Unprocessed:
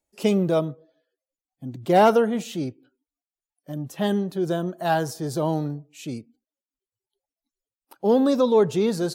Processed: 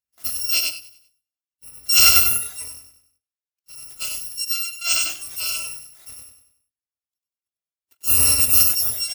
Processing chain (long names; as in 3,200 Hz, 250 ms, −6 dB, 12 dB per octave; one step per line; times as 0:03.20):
samples in bit-reversed order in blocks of 256 samples
high-pass filter 56 Hz
repeating echo 96 ms, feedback 42%, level −3 dB
noise reduction from a noise print of the clip's start 11 dB
0:00.49–0:01.67: parametric band 1,200 Hz −14.5 dB 0.36 octaves
level +2 dB